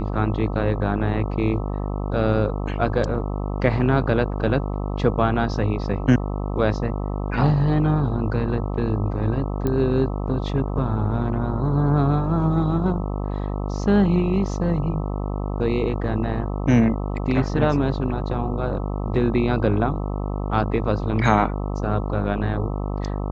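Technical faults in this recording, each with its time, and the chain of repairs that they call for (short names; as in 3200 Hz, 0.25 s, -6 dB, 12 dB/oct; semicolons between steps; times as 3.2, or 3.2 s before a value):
buzz 50 Hz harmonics 26 -26 dBFS
9.67 pop -13 dBFS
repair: de-click; de-hum 50 Hz, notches 26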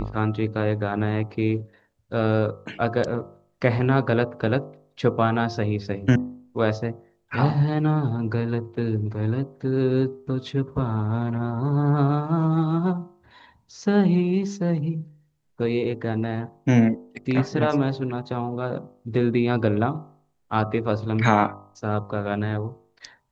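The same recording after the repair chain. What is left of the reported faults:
none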